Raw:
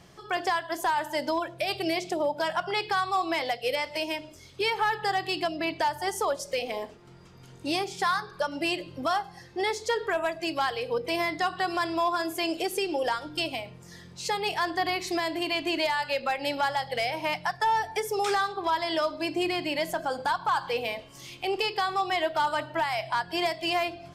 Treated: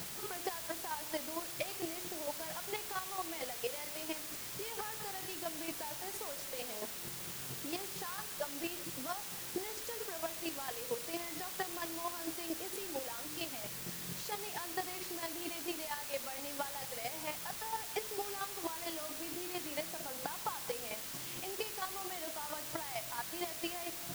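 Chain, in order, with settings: HPF 120 Hz; bell 200 Hz +6.5 dB 2.9 oct; compressor 4:1, threshold -39 dBFS, peak gain reduction 15.5 dB; chopper 4.4 Hz, depth 65%, duty 15%; in parallel at -7 dB: requantised 6-bit, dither triangular; on the sum: gain -1.5 dB

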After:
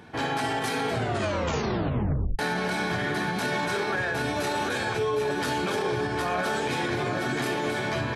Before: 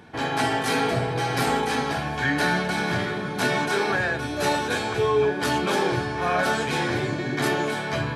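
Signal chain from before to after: echo 0.759 s -7 dB; reverb RT60 0.75 s, pre-delay 38 ms, DRR 13 dB; 0.92 tape stop 1.47 s; limiter -19 dBFS, peak gain reduction 9.5 dB; 5.19–5.6 crackle 250/s -55 dBFS

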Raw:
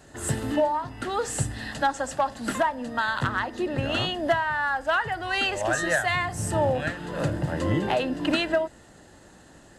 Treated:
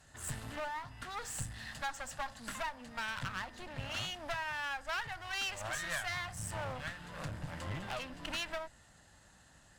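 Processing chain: one-sided clip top -38 dBFS; bell 360 Hz -14.5 dB 1.5 oct; gain -7 dB

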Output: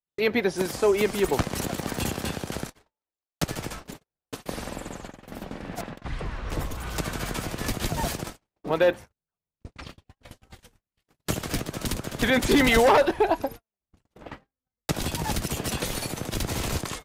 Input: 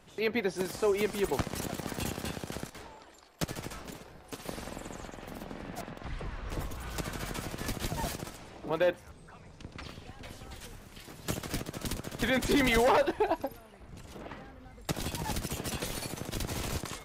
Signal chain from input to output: gate -42 dBFS, range -51 dB; gain +6.5 dB

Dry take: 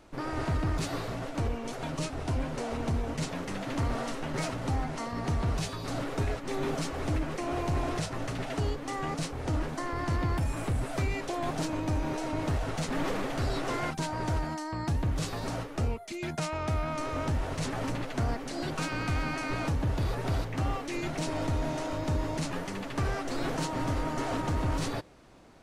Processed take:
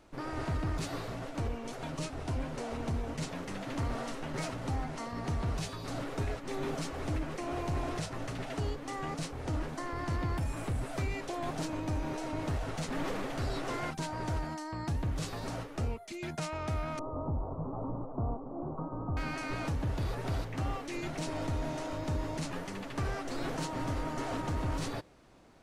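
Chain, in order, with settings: 16.99–19.17 steep low-pass 1200 Hz 72 dB/oct; gain -4 dB

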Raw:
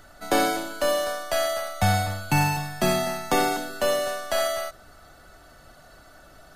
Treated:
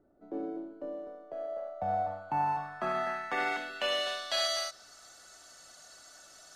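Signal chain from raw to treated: RIAA curve recording; limiter -12 dBFS, peak gain reduction 7.5 dB; low-pass sweep 350 Hz -> 6600 Hz, 1.09–5.02; gain -7.5 dB

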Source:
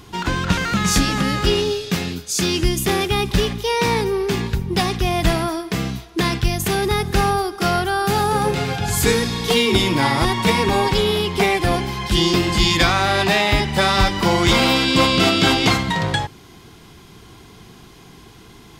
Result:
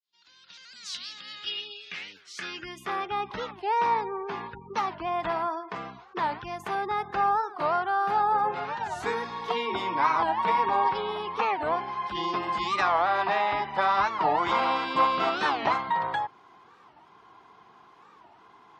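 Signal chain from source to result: opening faded in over 3.47 s; spectral gate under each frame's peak -30 dB strong; band-pass sweep 4400 Hz -> 1000 Hz, 1.05–3.11; record warp 45 rpm, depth 250 cents

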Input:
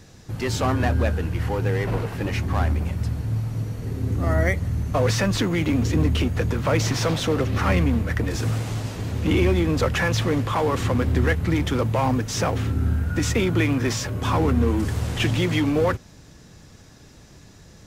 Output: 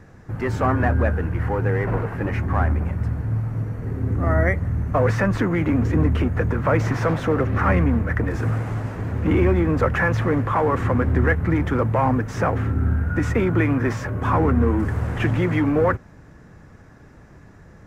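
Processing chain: resonant high shelf 2500 Hz -13.5 dB, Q 1.5; gain +1.5 dB

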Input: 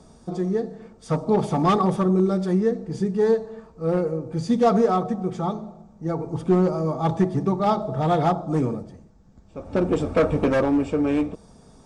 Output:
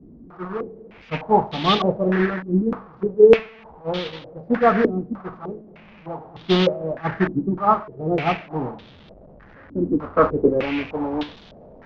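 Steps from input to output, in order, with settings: delta modulation 32 kbps, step -20 dBFS; expander -13 dBFS; in parallel at -7 dB: short-mantissa float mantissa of 2-bit; on the sum: stepped low-pass 3.3 Hz 290–3500 Hz

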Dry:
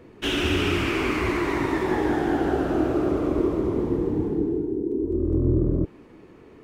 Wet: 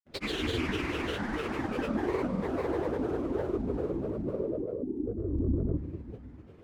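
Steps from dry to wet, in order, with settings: analogue delay 0.133 s, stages 1024, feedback 63%, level -10 dB; grains, pitch spread up and down by 7 st; gain -7.5 dB

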